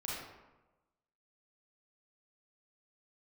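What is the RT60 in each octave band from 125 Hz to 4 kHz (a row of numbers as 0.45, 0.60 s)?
1.2, 1.1, 1.1, 1.1, 0.85, 0.60 s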